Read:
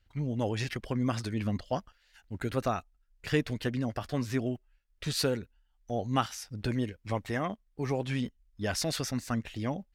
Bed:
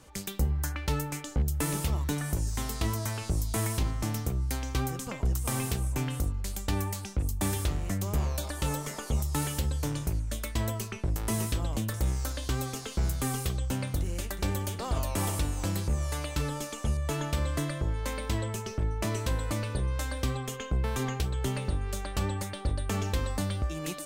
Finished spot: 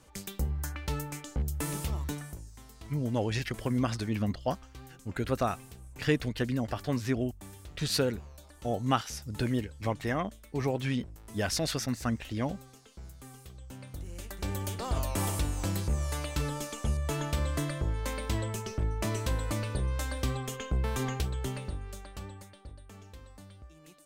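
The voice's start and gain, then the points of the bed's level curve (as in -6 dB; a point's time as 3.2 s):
2.75 s, +1.0 dB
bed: 2.08 s -4 dB
2.51 s -18.5 dB
13.46 s -18.5 dB
14.72 s -1 dB
21.19 s -1 dB
22.91 s -20 dB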